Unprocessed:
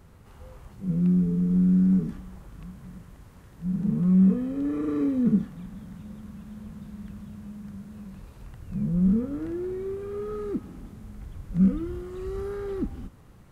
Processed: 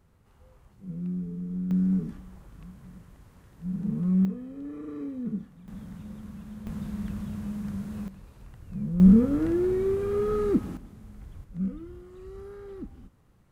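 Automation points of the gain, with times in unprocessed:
-10.5 dB
from 1.71 s -4 dB
from 4.25 s -10.5 dB
from 5.68 s 0 dB
from 6.67 s +6.5 dB
from 8.08 s -4 dB
from 9 s +6.5 dB
from 10.77 s -4 dB
from 11.44 s -10 dB

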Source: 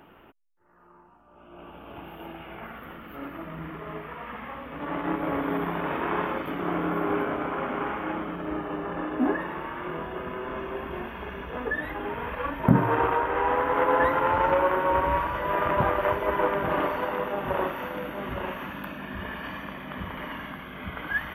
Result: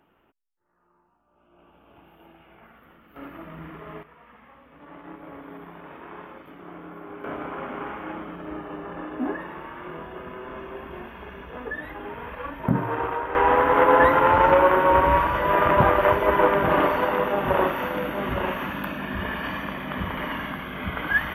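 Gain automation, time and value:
-11.5 dB
from 3.16 s -2.5 dB
from 4.03 s -13.5 dB
from 7.24 s -3.5 dB
from 13.35 s +6 dB

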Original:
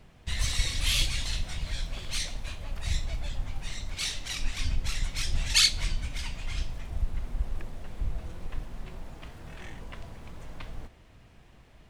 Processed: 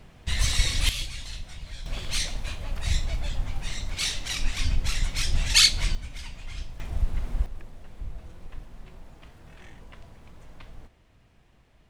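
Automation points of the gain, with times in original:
+4.5 dB
from 0.89 s -6 dB
from 1.86 s +4 dB
from 5.95 s -4 dB
from 6.8 s +4 dB
from 7.46 s -5 dB

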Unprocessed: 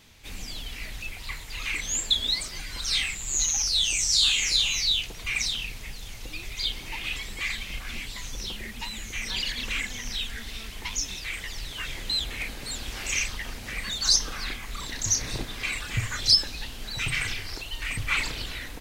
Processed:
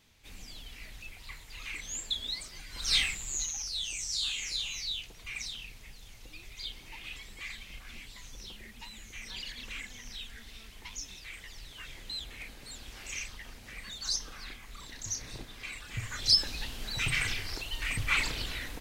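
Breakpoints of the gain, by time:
2.69 s -10 dB
2.95 s 0 dB
3.55 s -11.5 dB
15.83 s -11.5 dB
16.5 s -2 dB

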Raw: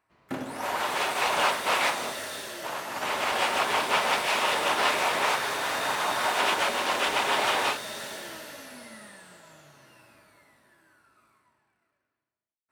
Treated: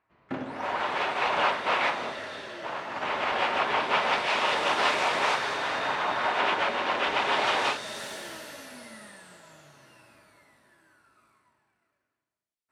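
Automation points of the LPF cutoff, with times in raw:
3.75 s 3200 Hz
4.77 s 6000 Hz
5.32 s 6000 Hz
6.05 s 3100 Hz
6.98 s 3100 Hz
7.77 s 6900 Hz
8.06 s 12000 Hz

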